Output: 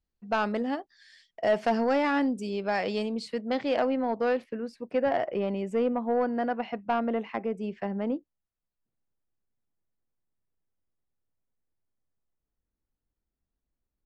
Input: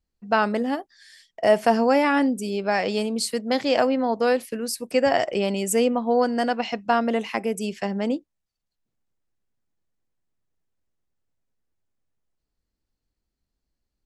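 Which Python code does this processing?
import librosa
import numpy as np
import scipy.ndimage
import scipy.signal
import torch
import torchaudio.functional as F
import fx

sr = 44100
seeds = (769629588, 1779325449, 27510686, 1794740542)

y = fx.lowpass(x, sr, hz=fx.steps((0.0, 5100.0), (3.14, 3000.0), (4.44, 1800.0)), slope=12)
y = 10.0 ** (-12.0 / 20.0) * np.tanh(y / 10.0 ** (-12.0 / 20.0))
y = F.gain(torch.from_numpy(y), -4.5).numpy()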